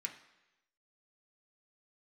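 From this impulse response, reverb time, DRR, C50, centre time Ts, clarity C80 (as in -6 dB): 1.0 s, 1.0 dB, 10.0 dB, 15 ms, 12.5 dB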